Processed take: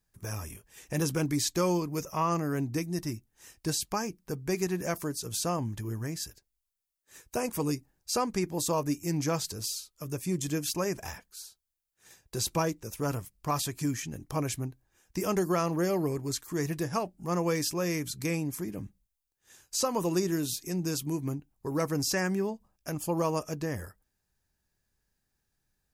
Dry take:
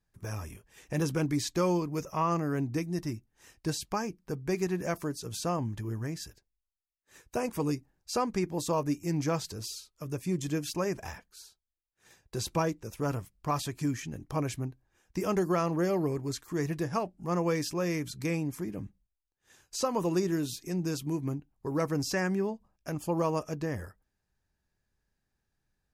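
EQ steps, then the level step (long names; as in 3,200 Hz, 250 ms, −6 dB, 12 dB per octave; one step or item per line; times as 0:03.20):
high-shelf EQ 5,600 Hz +10 dB
0.0 dB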